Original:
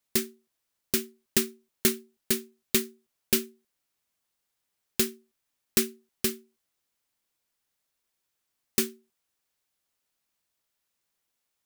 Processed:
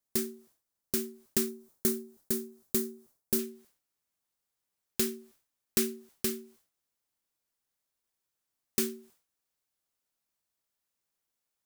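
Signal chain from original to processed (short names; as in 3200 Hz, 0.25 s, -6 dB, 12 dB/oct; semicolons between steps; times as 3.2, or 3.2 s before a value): bell 2700 Hz -8 dB 1.6 oct, from 1.49 s -14.5 dB, from 3.39 s -3.5 dB; sustainer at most 130 dB/s; gain -4 dB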